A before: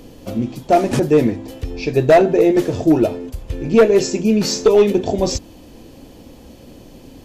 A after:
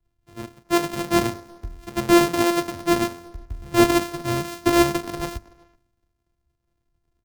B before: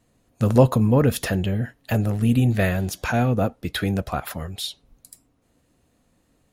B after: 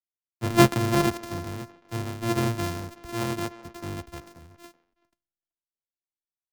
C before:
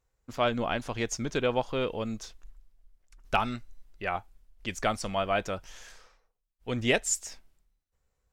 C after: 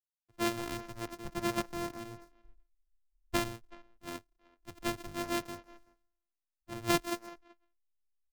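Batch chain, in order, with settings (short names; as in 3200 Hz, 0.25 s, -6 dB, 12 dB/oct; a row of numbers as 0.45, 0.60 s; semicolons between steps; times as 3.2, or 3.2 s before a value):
sample sorter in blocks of 128 samples; notch 610 Hz, Q 17; speakerphone echo 0.38 s, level -10 dB; in parallel at -10 dB: backlash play -31 dBFS; on the sum: three-band expander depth 100%; gain -11 dB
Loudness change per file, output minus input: -6.0, -4.5, -6.0 LU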